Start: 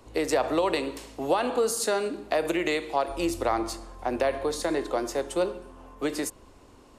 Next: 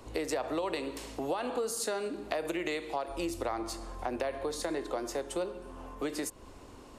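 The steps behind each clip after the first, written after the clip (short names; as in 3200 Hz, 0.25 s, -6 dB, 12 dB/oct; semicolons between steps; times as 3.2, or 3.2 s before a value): compressor 2.5:1, threshold -38 dBFS, peak gain reduction 13 dB; gain +2.5 dB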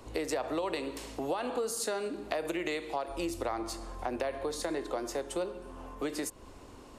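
nothing audible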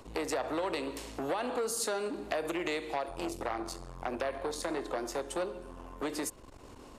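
core saturation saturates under 1600 Hz; gain +1.5 dB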